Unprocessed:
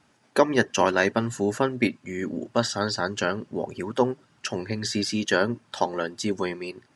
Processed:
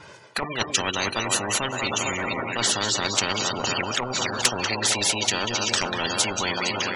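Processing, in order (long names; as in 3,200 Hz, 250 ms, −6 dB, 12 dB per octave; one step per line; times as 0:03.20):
low-shelf EQ 79 Hz −8.5 dB
feedback echo with a long and a short gap by turns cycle 761 ms, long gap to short 1.5 to 1, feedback 43%, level −16 dB
gate on every frequency bin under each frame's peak −25 dB strong
high-shelf EQ 9,200 Hz −6.5 dB
reversed playback
downward compressor 16 to 1, threshold −28 dBFS, peak gain reduction 17 dB
reversed playback
flanger swept by the level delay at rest 2.1 ms, full sweep at −33 dBFS
automatic gain control gain up to 16 dB
on a send: feedback echo with a band-pass in the loop 191 ms, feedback 49%, band-pass 650 Hz, level −11 dB
on the sum: every bin compressed towards the loudest bin 10 to 1
level +3 dB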